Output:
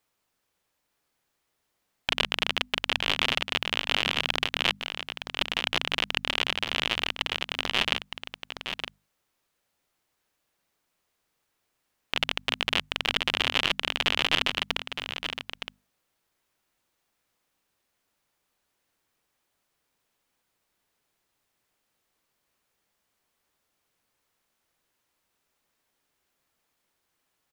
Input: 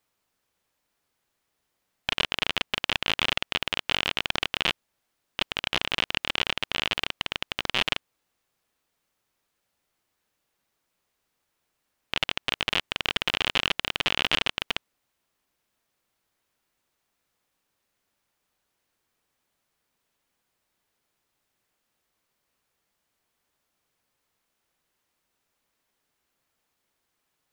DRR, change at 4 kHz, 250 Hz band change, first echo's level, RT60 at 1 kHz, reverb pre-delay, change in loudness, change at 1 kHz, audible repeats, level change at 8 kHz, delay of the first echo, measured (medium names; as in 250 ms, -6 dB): no reverb, +0.5 dB, 0.0 dB, -8.5 dB, no reverb, no reverb, 0.0 dB, +0.5 dB, 1, +0.5 dB, 915 ms